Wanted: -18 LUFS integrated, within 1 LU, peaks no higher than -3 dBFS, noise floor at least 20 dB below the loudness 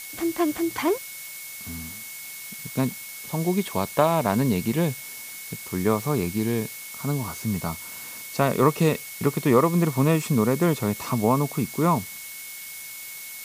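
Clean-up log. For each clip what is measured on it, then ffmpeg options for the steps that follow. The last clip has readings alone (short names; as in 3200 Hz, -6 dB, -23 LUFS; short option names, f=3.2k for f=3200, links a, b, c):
steady tone 2200 Hz; tone level -42 dBFS; noise floor -39 dBFS; noise floor target -46 dBFS; loudness -25.5 LUFS; peak -5.0 dBFS; loudness target -18.0 LUFS
-> -af "bandreject=f=2.2k:w=30"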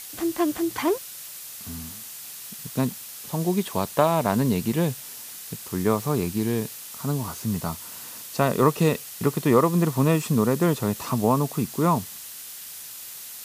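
steady tone none; noise floor -40 dBFS; noise floor target -45 dBFS
-> -af "afftdn=nr=6:nf=-40"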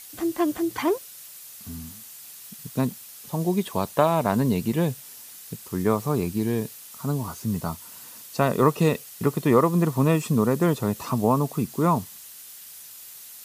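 noise floor -44 dBFS; noise floor target -45 dBFS
-> -af "afftdn=nr=6:nf=-44"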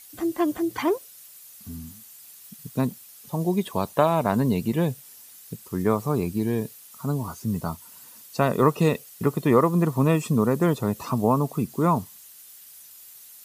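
noise floor -48 dBFS; loudness -24.5 LUFS; peak -5.0 dBFS; loudness target -18.0 LUFS
-> -af "volume=6.5dB,alimiter=limit=-3dB:level=0:latency=1"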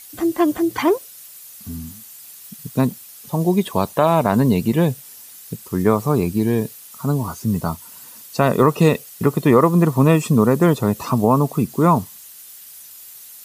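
loudness -18.5 LUFS; peak -3.0 dBFS; noise floor -41 dBFS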